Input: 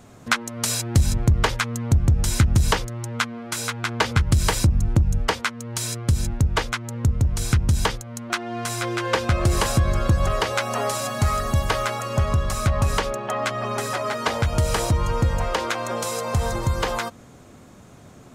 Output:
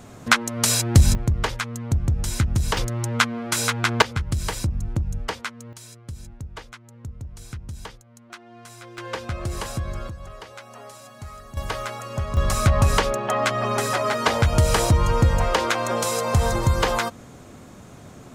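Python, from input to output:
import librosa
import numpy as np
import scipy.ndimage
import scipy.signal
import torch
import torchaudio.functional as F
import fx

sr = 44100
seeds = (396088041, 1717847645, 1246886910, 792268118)

y = fx.gain(x, sr, db=fx.steps((0.0, 4.0), (1.15, -4.0), (2.77, 4.5), (4.02, -6.5), (5.73, -16.0), (8.98, -9.0), (10.09, -17.5), (11.57, -6.0), (12.37, 3.0)))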